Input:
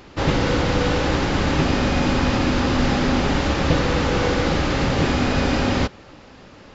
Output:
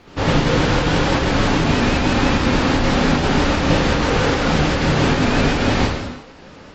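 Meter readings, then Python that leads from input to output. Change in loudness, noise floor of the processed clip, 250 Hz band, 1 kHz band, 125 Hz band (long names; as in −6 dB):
+3.0 dB, −41 dBFS, +3.0 dB, +3.5 dB, +3.0 dB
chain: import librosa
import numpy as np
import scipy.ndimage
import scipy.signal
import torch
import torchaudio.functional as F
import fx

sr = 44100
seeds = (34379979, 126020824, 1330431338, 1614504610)

p1 = fx.volume_shaper(x, sr, bpm=152, per_beat=1, depth_db=-17, release_ms=72.0, shape='slow start')
p2 = x + (p1 * librosa.db_to_amplitude(1.0))
p3 = fx.rev_gated(p2, sr, seeds[0], gate_ms=380, shape='falling', drr_db=-0.5)
p4 = fx.vibrato_shape(p3, sr, shape='saw_up', rate_hz=6.1, depth_cents=100.0)
y = p4 * librosa.db_to_amplitude(-5.5)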